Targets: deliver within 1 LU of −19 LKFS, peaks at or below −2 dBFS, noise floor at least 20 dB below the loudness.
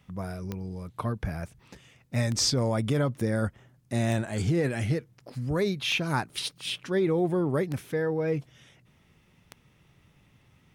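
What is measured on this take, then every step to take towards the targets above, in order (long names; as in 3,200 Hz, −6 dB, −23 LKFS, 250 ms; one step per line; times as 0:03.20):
number of clicks 6; integrated loudness −29.0 LKFS; sample peak −13.5 dBFS; target loudness −19.0 LKFS
→ click removal
level +10 dB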